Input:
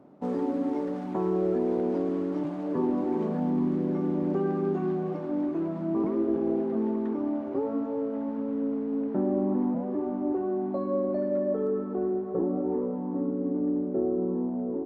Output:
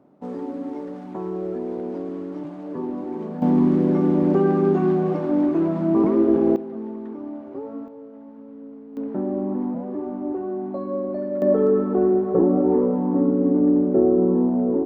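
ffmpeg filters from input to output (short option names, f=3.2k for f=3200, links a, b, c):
-af "asetnsamples=n=441:p=0,asendcmd='3.42 volume volume 9dB;6.56 volume volume -4dB;7.88 volume volume -10.5dB;8.97 volume volume 1dB;11.42 volume volume 10dB',volume=-2dB"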